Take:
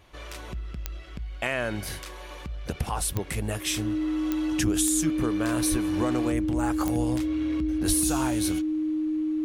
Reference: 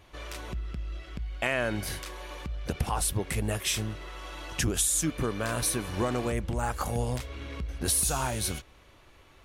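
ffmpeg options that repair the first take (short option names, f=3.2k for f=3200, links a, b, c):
-filter_complex "[0:a]adeclick=t=4,bandreject=f=310:w=30,asplit=3[a][b][c];[a]afade=t=out:st=5.7:d=0.02[d];[b]highpass=f=140:w=0.5412,highpass=f=140:w=1.3066,afade=t=in:st=5.7:d=0.02,afade=t=out:st=5.82:d=0.02[e];[c]afade=t=in:st=5.82:d=0.02[f];[d][e][f]amix=inputs=3:normalize=0,asplit=3[g][h][i];[g]afade=t=out:st=7.87:d=0.02[j];[h]highpass=f=140:w=0.5412,highpass=f=140:w=1.3066,afade=t=in:st=7.87:d=0.02,afade=t=out:st=7.99:d=0.02[k];[i]afade=t=in:st=7.99:d=0.02[l];[j][k][l]amix=inputs=3:normalize=0"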